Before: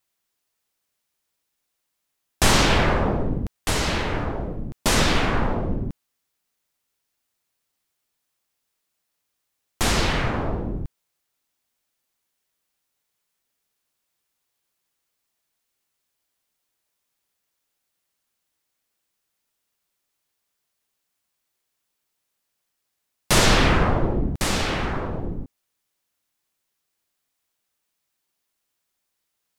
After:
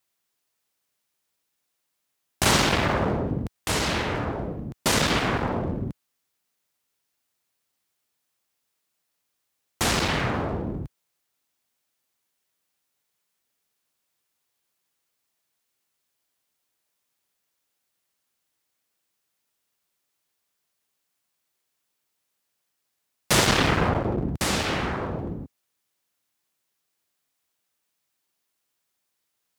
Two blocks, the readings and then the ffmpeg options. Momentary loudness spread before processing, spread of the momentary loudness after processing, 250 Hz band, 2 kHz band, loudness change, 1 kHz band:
14 LU, 13 LU, -1.5 dB, -1.5 dB, -2.0 dB, -1.5 dB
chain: -af "aeval=exprs='clip(val(0),-1,0.0794)':c=same,highpass=72"

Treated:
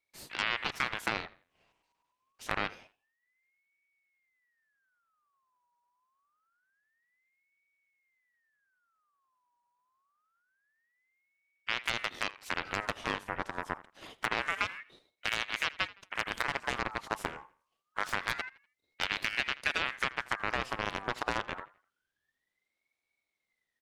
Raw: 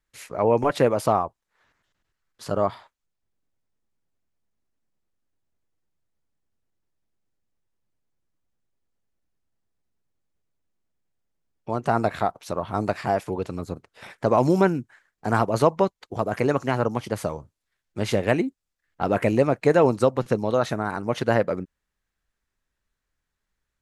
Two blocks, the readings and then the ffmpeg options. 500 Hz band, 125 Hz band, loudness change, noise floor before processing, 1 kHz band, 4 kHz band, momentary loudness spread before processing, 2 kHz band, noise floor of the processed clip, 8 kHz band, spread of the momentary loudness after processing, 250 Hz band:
-21.0 dB, -20.5 dB, -10.5 dB, -82 dBFS, -10.5 dB, +4.0 dB, 13 LU, +1.0 dB, -85 dBFS, -5.0 dB, 10 LU, -20.0 dB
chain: -filter_complex "[0:a]acompressor=threshold=-26dB:ratio=5,aeval=exprs='0.188*(cos(1*acos(clip(val(0)/0.188,-1,1)))-cos(1*PI/2))+0.0473*(cos(7*acos(clip(val(0)/0.188,-1,1)))-cos(7*PI/2))':c=same,asplit=2[a][b];[b]adelay=82,lowpass=f=3.4k:p=1,volume=-19.5dB,asplit=2[c][d];[d]adelay=82,lowpass=f=3.4k:p=1,volume=0.36,asplit=2[e][f];[f]adelay=82,lowpass=f=3.4k:p=1,volume=0.36[g];[c][e][g]amix=inputs=3:normalize=0[h];[a][h]amix=inputs=2:normalize=0,aeval=exprs='val(0)*sin(2*PI*1600*n/s+1600*0.4/0.26*sin(2*PI*0.26*n/s))':c=same"

